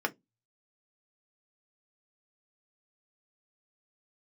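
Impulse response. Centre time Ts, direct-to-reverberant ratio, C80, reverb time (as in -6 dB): 4 ms, 2.5 dB, 36.5 dB, 0.15 s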